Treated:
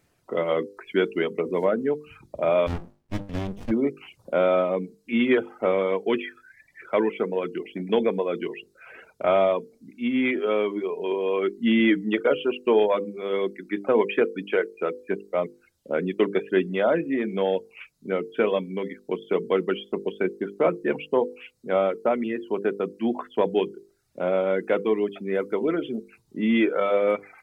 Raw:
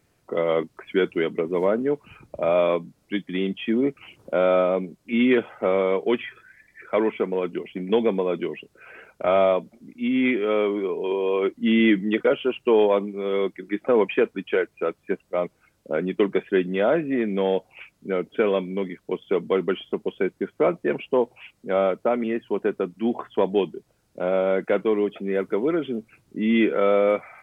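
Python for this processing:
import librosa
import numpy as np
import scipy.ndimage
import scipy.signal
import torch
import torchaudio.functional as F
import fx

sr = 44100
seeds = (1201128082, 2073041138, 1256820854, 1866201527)

y = fx.dereverb_blind(x, sr, rt60_s=0.57)
y = fx.hum_notches(y, sr, base_hz=50, count=10)
y = fx.running_max(y, sr, window=65, at=(2.66, 3.7), fade=0.02)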